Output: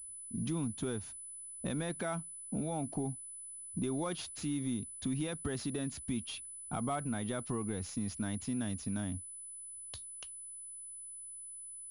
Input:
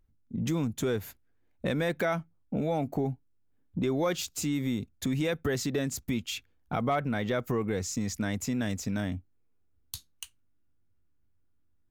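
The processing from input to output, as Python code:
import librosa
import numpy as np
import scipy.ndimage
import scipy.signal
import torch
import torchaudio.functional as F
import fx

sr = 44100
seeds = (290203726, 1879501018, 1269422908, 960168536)

y = fx.graphic_eq_10(x, sr, hz=(125, 500, 2000), db=(-4, -9, -10))
y = fx.pwm(y, sr, carrier_hz=10000.0)
y = y * 10.0 ** (-2.5 / 20.0)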